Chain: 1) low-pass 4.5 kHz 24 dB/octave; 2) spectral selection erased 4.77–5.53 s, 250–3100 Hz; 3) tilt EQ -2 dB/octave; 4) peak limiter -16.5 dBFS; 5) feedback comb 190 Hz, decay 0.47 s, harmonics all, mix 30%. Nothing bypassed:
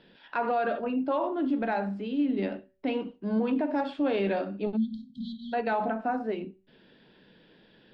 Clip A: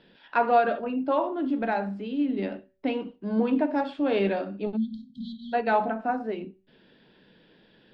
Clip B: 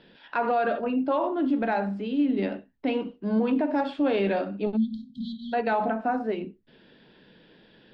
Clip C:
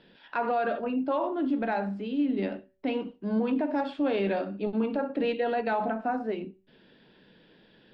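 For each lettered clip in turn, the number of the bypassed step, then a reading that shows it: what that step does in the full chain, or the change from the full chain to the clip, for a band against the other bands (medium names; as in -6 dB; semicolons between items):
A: 4, crest factor change +6.0 dB; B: 5, loudness change +3.0 LU; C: 2, momentary loudness spread change -2 LU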